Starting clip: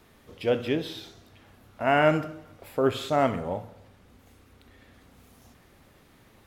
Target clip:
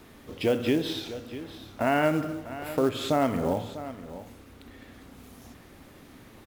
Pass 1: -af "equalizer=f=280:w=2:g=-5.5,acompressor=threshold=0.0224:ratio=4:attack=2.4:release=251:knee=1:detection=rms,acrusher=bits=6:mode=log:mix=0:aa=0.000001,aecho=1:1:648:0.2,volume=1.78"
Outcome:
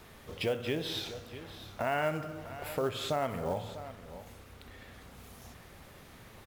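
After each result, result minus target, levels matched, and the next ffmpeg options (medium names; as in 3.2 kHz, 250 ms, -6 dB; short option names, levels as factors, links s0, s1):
250 Hz band -5.0 dB; compression: peak gain reduction +5 dB
-af "equalizer=f=280:w=2:g=5.5,acompressor=threshold=0.0224:ratio=4:attack=2.4:release=251:knee=1:detection=rms,acrusher=bits=6:mode=log:mix=0:aa=0.000001,aecho=1:1:648:0.2,volume=1.78"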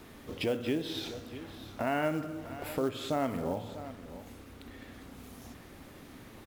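compression: peak gain reduction +6.5 dB
-af "equalizer=f=280:w=2:g=5.5,acompressor=threshold=0.0631:ratio=4:attack=2.4:release=251:knee=1:detection=rms,acrusher=bits=6:mode=log:mix=0:aa=0.000001,aecho=1:1:648:0.2,volume=1.78"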